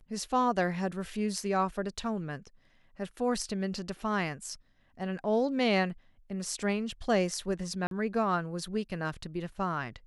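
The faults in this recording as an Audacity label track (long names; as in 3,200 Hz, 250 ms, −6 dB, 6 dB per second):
7.870000	7.910000	drop-out 42 ms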